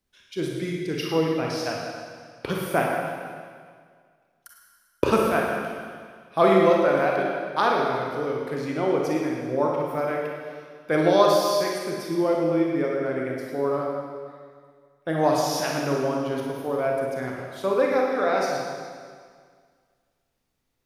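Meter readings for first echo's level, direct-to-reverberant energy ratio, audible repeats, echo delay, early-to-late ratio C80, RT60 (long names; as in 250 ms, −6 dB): no echo audible, −2.0 dB, no echo audible, no echo audible, 2.0 dB, 1.9 s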